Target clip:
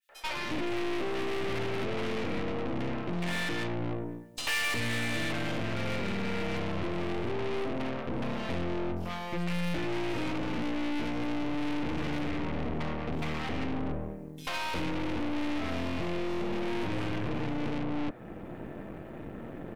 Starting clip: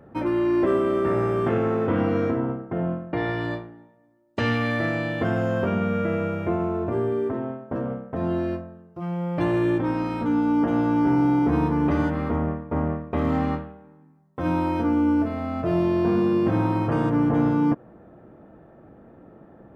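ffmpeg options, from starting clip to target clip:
ffmpeg -i in.wav -filter_complex "[0:a]acompressor=threshold=-29dB:ratio=3,acrossover=split=670|4200[link_01][link_02][link_03];[link_02]adelay=90[link_04];[link_01]adelay=360[link_05];[link_05][link_04][link_03]amix=inputs=3:normalize=0,alimiter=level_in=0.5dB:limit=-24dB:level=0:latency=1:release=449,volume=-0.5dB,dynaudnorm=framelen=110:gausssize=5:maxgain=3.5dB,asoftclip=type=tanh:threshold=-35.5dB,highshelf=frequency=1800:width_type=q:width=1.5:gain=8,aeval=exprs='0.0631*(cos(1*acos(clip(val(0)/0.0631,-1,1)))-cos(1*PI/2))+0.01*(cos(8*acos(clip(val(0)/0.0631,-1,1)))-cos(8*PI/2))':channel_layout=same,adynamicequalizer=threshold=0.00355:dfrequency=2300:dqfactor=0.7:tfrequency=2300:tqfactor=0.7:attack=5:release=100:ratio=0.375:range=2:mode=cutabove:tftype=highshelf,volume=4dB" out.wav

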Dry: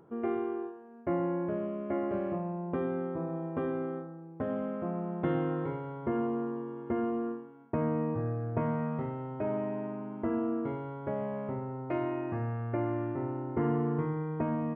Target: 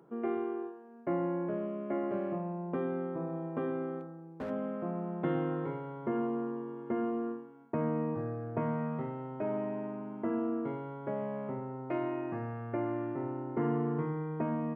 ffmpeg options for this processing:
ffmpeg -i in.wav -filter_complex "[0:a]highpass=frequency=130:width=0.5412,highpass=frequency=130:width=1.3066,asplit=3[link_01][link_02][link_03];[link_01]afade=type=out:start_time=3.99:duration=0.02[link_04];[link_02]volume=33dB,asoftclip=hard,volume=-33dB,afade=type=in:start_time=3.99:duration=0.02,afade=type=out:start_time=4.49:duration=0.02[link_05];[link_03]afade=type=in:start_time=4.49:duration=0.02[link_06];[link_04][link_05][link_06]amix=inputs=3:normalize=0,volume=-1.5dB" out.wav

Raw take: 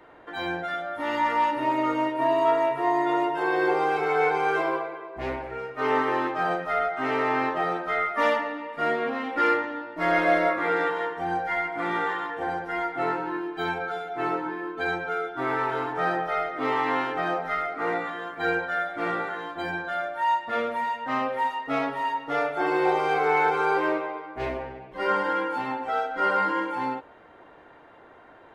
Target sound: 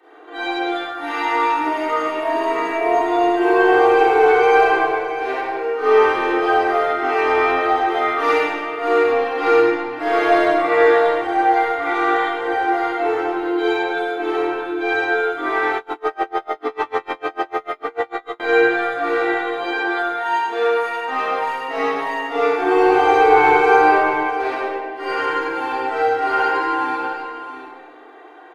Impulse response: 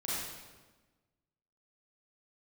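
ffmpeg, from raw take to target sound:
-filter_complex "[0:a]highpass=frequency=320:width=0.5412,highpass=frequency=320:width=1.3066,aecho=1:1:2.6:0.86,aeval=exprs='0.473*(cos(1*acos(clip(val(0)/0.473,-1,1)))-cos(1*PI/2))+0.0237*(cos(4*acos(clip(val(0)/0.473,-1,1)))-cos(4*PI/2))':channel_layout=same,aecho=1:1:101|652|721:0.398|0.266|0.15[link_01];[1:a]atrim=start_sample=2205,asetrate=48510,aresample=44100[link_02];[link_01][link_02]afir=irnorm=-1:irlink=0,asettb=1/sr,asplit=3[link_03][link_04][link_05];[link_03]atrim=end=15.774[link_06];[link_04]atrim=start=15.77:end=18.4,asetpts=PTS-STARTPTS,afade=type=in:duration=0.004:curve=qsin,afade=type=out:start_time=2.626:duration=0.004:curve=qsin,aeval=exprs='val(0)*pow(10,-33*(0.5-0.5*cos(2*PI*6.7*n/s))/20)':channel_layout=same[link_07];[link_05]atrim=start=18.396[link_08];[link_06][link_07]acrossfade=duration=0.004:curve1=hsin:curve2=qsin[link_09];[link_09][link_08]acrossfade=duration=0.004:curve1=qsin:curve2=hsin,volume=1.5dB"

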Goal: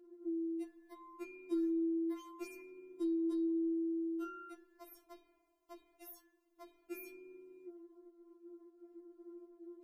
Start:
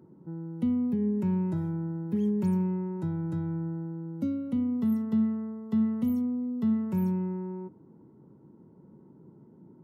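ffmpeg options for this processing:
ffmpeg -i in.wav -af "agate=range=-8dB:threshold=-53dB:ratio=16:detection=peak,afftfilt=real='re*4*eq(mod(b,16),0)':imag='im*4*eq(mod(b,16),0)':win_size=2048:overlap=0.75,volume=3dB" out.wav

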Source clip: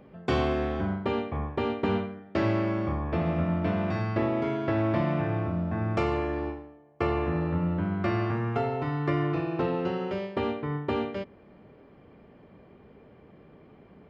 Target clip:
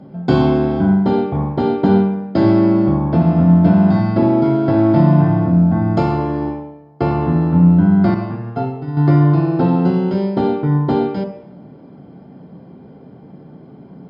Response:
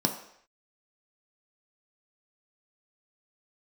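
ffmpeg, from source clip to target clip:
-filter_complex "[0:a]asettb=1/sr,asplit=3[link_01][link_02][link_03];[link_01]atrim=end=8.144[link_04];[link_02]atrim=start=8.14:end=8.97,asetpts=PTS-STARTPTS,afade=type=in:duration=0.004:curve=qsin,afade=type=out:start_time=0.826:duration=0.004:curve=qsin,agate=range=-33dB:threshold=-21dB:ratio=3:detection=peak[link_05];[link_03]atrim=start=8.966[link_06];[link_04][link_05]acrossfade=duration=0.004:curve1=hsin:curve2=qsin[link_07];[link_07][link_06]acrossfade=duration=0.004:curve1=qsin:curve2=hsin[link_08];[1:a]atrim=start_sample=2205,asetrate=39249,aresample=44100[link_09];[link_08][link_09]afir=irnorm=-1:irlink=0,volume=-2.5dB"

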